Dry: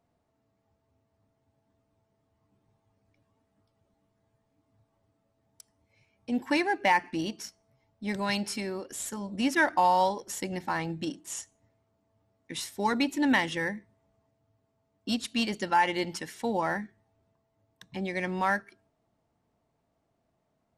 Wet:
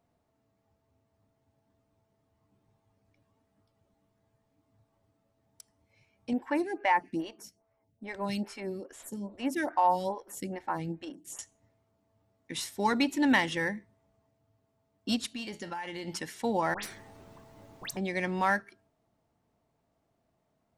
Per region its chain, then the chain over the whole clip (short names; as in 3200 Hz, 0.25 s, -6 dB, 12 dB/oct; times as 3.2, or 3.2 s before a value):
6.33–11.39 bell 4300 Hz -7 dB 1.8 oct + photocell phaser 2.4 Hz
15.34–16.08 resonator 84 Hz, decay 0.21 s + compressor, threshold -34 dBFS
16.74–17.97 half-wave gain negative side -3 dB + dispersion highs, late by 92 ms, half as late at 2100 Hz + spectral compressor 4:1
whole clip: dry